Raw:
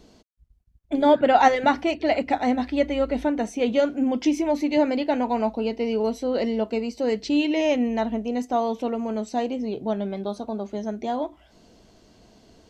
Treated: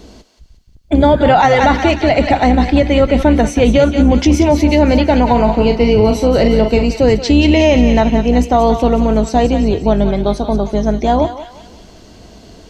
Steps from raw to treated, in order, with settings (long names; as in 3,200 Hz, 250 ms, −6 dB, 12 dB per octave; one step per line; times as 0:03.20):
sub-octave generator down 2 octaves, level −1 dB
0:05.30–0:06.83: double-tracking delay 42 ms −7.5 dB
feedback echo with a high-pass in the loop 179 ms, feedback 55%, high-pass 1,100 Hz, level −8 dB
boost into a limiter +14.5 dB
level −1 dB